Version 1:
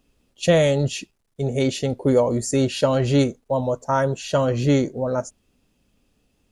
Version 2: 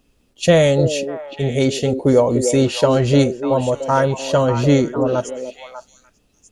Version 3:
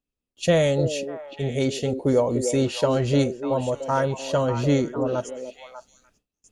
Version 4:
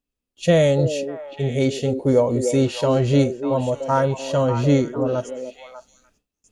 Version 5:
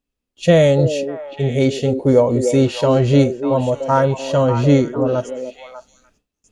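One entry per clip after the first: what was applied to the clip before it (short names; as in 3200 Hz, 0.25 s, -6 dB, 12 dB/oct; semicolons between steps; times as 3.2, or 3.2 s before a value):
delay with a stepping band-pass 0.297 s, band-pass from 390 Hz, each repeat 1.4 oct, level -5 dB; gain +4 dB
gate with hold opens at -42 dBFS; gain -6.5 dB
harmonic-percussive split percussive -7 dB; gain +4.5 dB
high shelf 7000 Hz -6 dB; gain +4 dB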